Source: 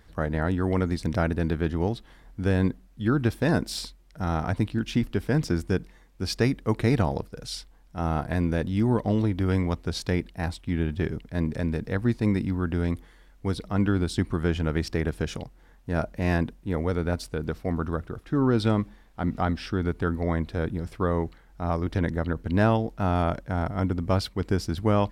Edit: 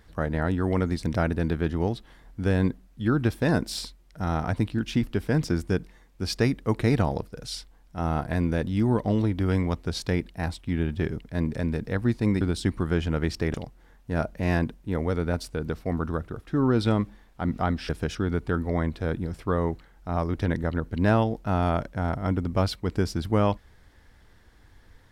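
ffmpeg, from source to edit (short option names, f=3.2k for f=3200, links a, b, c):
-filter_complex "[0:a]asplit=5[a][b][c][d][e];[a]atrim=end=12.412[f];[b]atrim=start=13.938:end=15.072[g];[c]atrim=start=15.328:end=19.682[h];[d]atrim=start=15.068:end=15.332[i];[e]atrim=start=19.678[j];[f][g]acrossfade=d=0.004:c1=hsin:c2=hsin[k];[k][h]acrossfade=d=0.004:c1=hsin:c2=hsin[l];[l][i]acrossfade=d=0.004:c1=hsin:c2=hsin[m];[m][j]acrossfade=d=0.004:c1=hsin:c2=hsin"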